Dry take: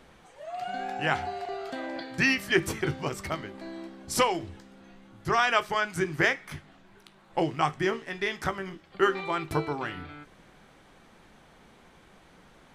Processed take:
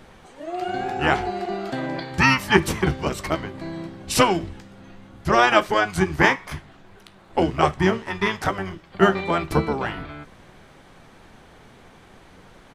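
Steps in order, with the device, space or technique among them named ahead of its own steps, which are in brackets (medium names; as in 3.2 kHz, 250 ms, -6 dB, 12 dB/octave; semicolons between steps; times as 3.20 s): octave pedal (harmony voices -12 st -3 dB); trim +5.5 dB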